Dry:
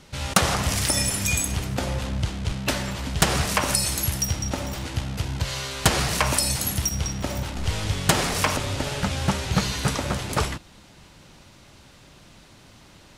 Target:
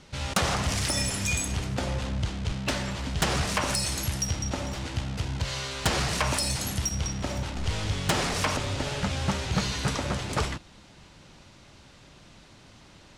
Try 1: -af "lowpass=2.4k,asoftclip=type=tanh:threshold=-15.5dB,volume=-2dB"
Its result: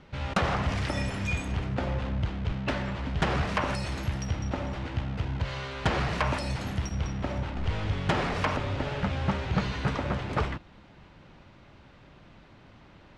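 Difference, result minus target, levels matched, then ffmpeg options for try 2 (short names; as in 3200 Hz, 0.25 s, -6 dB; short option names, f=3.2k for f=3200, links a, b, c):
8000 Hz band -15.0 dB
-af "lowpass=8.3k,asoftclip=type=tanh:threshold=-15.5dB,volume=-2dB"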